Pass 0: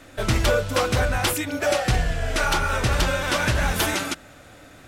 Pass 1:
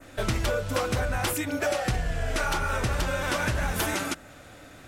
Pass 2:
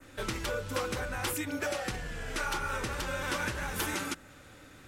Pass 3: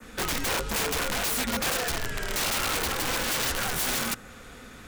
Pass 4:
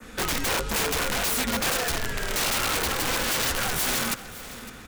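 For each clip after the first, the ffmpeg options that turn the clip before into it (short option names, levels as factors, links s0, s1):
-af "adynamicequalizer=threshold=0.0112:dfrequency=3700:dqfactor=0.95:tfrequency=3700:tqfactor=0.95:attack=5:release=100:ratio=0.375:range=2:mode=cutabove:tftype=bell,acompressor=threshold=0.0794:ratio=6,volume=0.891"
-filter_complex "[0:a]equalizer=f=670:w=6.7:g=-13,acrossover=split=240[s0][s1];[s0]asoftclip=type=tanh:threshold=0.0224[s2];[s2][s1]amix=inputs=2:normalize=0,volume=0.596"
-af "afreqshift=-51,aeval=exprs='(mod(29.9*val(0)+1,2)-1)/29.9':c=same,volume=2.37"
-af "aecho=1:1:558|1116|1674:0.158|0.0539|0.0183,volume=1.26"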